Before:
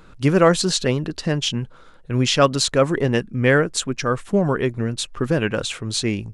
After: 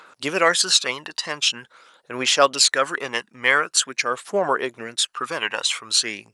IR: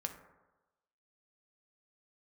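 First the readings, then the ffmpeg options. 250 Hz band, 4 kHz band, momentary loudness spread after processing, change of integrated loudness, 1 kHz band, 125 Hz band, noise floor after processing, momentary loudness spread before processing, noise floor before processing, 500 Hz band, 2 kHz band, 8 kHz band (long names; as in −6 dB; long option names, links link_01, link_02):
−13.5 dB, +4.5 dB, 10 LU, 0.0 dB, +2.0 dB, −22.5 dB, −61 dBFS, 9 LU, −45 dBFS, −5.0 dB, +3.5 dB, +5.0 dB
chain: -af "aphaser=in_gain=1:out_gain=1:delay=1.1:decay=0.5:speed=0.45:type=triangular,highpass=840,volume=4dB"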